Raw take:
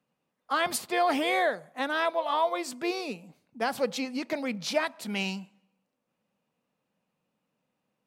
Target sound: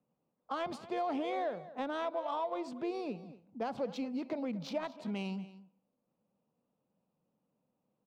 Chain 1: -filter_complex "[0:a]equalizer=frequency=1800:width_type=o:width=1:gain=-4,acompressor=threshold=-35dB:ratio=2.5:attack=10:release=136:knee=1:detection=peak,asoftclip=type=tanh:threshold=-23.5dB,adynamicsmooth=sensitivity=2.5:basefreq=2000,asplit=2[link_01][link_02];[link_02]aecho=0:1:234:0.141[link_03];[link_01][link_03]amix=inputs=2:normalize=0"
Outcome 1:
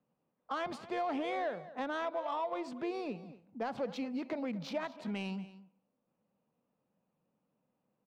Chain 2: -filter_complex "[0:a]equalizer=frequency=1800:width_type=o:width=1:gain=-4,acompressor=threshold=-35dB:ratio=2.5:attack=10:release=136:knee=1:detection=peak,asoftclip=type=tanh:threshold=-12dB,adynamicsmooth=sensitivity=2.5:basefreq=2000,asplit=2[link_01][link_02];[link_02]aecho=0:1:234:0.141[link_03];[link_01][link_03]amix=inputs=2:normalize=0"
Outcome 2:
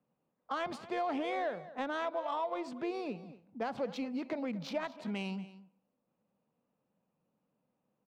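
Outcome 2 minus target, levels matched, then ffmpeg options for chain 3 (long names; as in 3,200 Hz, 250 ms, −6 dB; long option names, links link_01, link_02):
2,000 Hz band +4.0 dB
-filter_complex "[0:a]equalizer=frequency=1800:width_type=o:width=1:gain=-10.5,acompressor=threshold=-35dB:ratio=2.5:attack=10:release=136:knee=1:detection=peak,asoftclip=type=tanh:threshold=-12dB,adynamicsmooth=sensitivity=2.5:basefreq=2000,asplit=2[link_01][link_02];[link_02]aecho=0:1:234:0.141[link_03];[link_01][link_03]amix=inputs=2:normalize=0"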